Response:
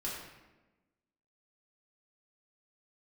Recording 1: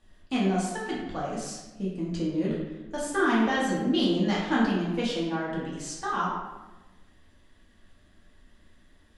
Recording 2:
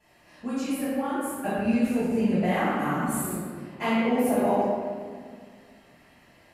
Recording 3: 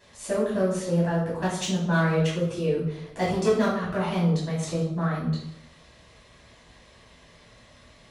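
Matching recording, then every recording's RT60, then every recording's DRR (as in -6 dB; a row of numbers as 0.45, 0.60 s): 1; 1.1, 1.9, 0.80 s; -6.5, -17.0, -8.5 dB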